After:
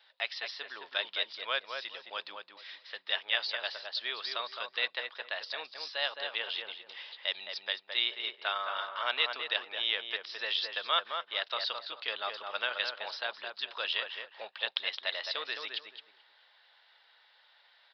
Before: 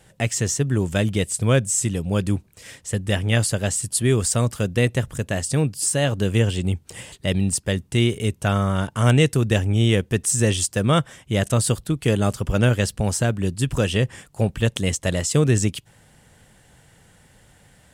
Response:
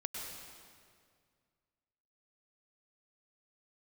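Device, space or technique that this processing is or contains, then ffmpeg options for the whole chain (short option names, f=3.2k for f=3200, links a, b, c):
musical greeting card: -filter_complex "[0:a]aresample=11025,aresample=44100,highpass=f=800:w=0.5412,highpass=f=800:w=1.3066,lowshelf=f=320:g=5.5,equalizer=f=3.8k:t=o:w=0.34:g=11,bandreject=f=760:w=13,asplit=2[a][b];[b]adelay=215,lowpass=f=1.7k:p=1,volume=-4dB,asplit=2[c][d];[d]adelay=215,lowpass=f=1.7k:p=1,volume=0.25,asplit=2[e][f];[f]adelay=215,lowpass=f=1.7k:p=1,volume=0.25[g];[a][c][e][g]amix=inputs=4:normalize=0,volume=-6.5dB"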